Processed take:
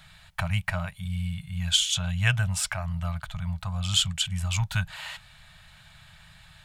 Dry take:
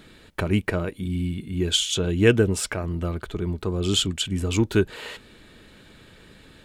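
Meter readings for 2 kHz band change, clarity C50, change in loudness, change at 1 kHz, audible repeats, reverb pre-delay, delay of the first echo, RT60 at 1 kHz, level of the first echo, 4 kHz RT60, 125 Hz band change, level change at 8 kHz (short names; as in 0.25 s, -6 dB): -0.5 dB, none, -3.5 dB, -1.0 dB, none, none, none, none, none, none, -1.5 dB, 0.0 dB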